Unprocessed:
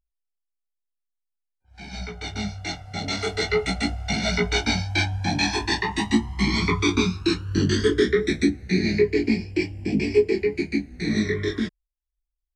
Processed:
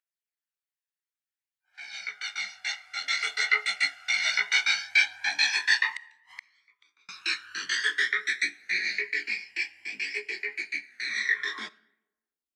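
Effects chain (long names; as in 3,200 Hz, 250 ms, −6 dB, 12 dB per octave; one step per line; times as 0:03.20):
high-pass filter sweep 1,700 Hz → 270 Hz, 0:11.33–0:12.17
0:05.89–0:07.09: gate with flip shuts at −19 dBFS, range −41 dB
on a send at −20 dB: convolution reverb RT60 0.90 s, pre-delay 5 ms
on the sum: phase shifter 0.57 Hz, delay 1.2 ms, feedback 31%
level −2.5 dB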